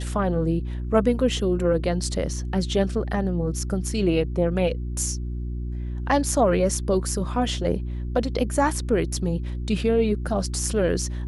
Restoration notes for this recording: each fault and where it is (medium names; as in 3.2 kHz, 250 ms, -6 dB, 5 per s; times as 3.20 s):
hum 60 Hz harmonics 6 -29 dBFS